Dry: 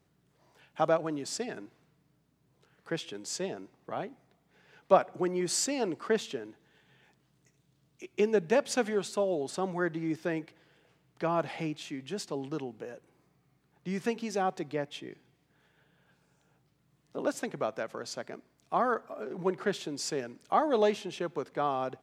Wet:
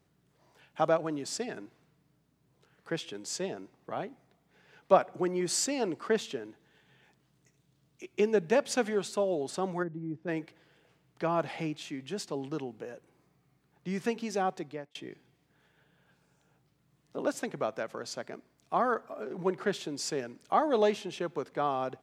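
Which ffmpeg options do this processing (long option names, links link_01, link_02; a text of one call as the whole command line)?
ffmpeg -i in.wav -filter_complex "[0:a]asplit=3[link_01][link_02][link_03];[link_01]afade=type=out:start_time=9.82:duration=0.02[link_04];[link_02]bandpass=frequency=110:width_type=q:width=0.64,afade=type=in:start_time=9.82:duration=0.02,afade=type=out:start_time=10.27:duration=0.02[link_05];[link_03]afade=type=in:start_time=10.27:duration=0.02[link_06];[link_04][link_05][link_06]amix=inputs=3:normalize=0,asplit=2[link_07][link_08];[link_07]atrim=end=14.95,asetpts=PTS-STARTPTS,afade=type=out:start_time=14.35:duration=0.6:curve=qsin[link_09];[link_08]atrim=start=14.95,asetpts=PTS-STARTPTS,afade=type=in:duration=0.004:curve=hsin[link_10];[link_09][link_10]concat=n=2:v=0:a=1" out.wav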